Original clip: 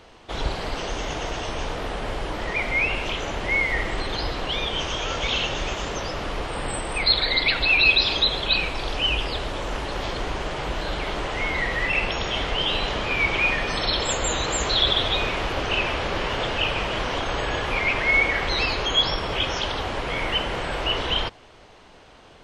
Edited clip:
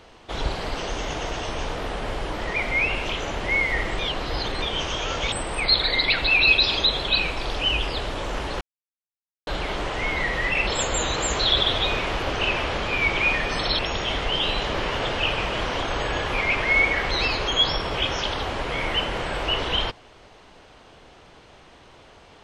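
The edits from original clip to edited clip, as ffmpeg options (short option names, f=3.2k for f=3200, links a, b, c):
-filter_complex "[0:a]asplit=10[a][b][c][d][e][f][g][h][i][j];[a]atrim=end=3.992[k];[b]atrim=start=3.988:end=4.622,asetpts=PTS-STARTPTS,areverse[l];[c]atrim=start=4.618:end=5.322[m];[d]atrim=start=6.698:end=9.99,asetpts=PTS-STARTPTS,afade=t=out:st=3.288:d=0.004:c=hsin[n];[e]atrim=start=9.99:end=10.85,asetpts=PTS-STARTPTS,volume=0[o];[f]atrim=start=10.85:end=12.052,asetpts=PTS-STARTPTS,afade=t=in:d=0.004:c=hsin[p];[g]atrim=start=13.968:end=16.122[q];[h]atrim=start=12.998:end=13.972[r];[i]atrim=start=12.048:end=13.002[s];[j]atrim=start=16.118[t];[k][l]acrossfade=d=0.004:c1=hsin:c2=hsin[u];[u][m]acrossfade=d=0.004:c1=hsin:c2=hsin[v];[n][o][p]concat=n=3:v=0:a=1[w];[v][w]acrossfade=d=0.004:c1=hsin:c2=hsin[x];[x][q]acrossfade=d=0.004:c1=hsin:c2=hsin[y];[y][r]acrossfade=d=0.004:c1=hsin:c2=hsin[z];[z][s]acrossfade=d=0.004:c1=hsin:c2=hsin[aa];[aa][t]acrossfade=d=0.004:c1=hsin:c2=hsin"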